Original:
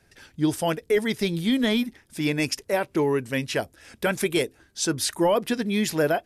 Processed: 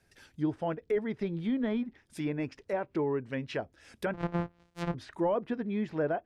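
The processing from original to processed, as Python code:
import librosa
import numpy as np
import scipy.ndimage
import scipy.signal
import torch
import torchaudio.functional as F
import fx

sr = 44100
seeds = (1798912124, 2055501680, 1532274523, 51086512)

y = fx.sample_sort(x, sr, block=256, at=(4.13, 4.93), fade=0.02)
y = fx.env_lowpass_down(y, sr, base_hz=1400.0, full_db=-21.5)
y = y * 10.0 ** (-7.5 / 20.0)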